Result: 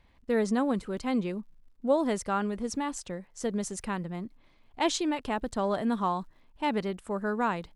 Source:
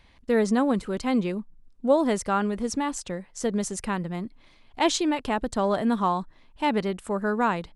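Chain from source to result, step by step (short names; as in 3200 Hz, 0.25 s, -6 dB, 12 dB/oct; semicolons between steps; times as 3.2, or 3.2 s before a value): crackle 150/s -55 dBFS; mismatched tape noise reduction decoder only; gain -4.5 dB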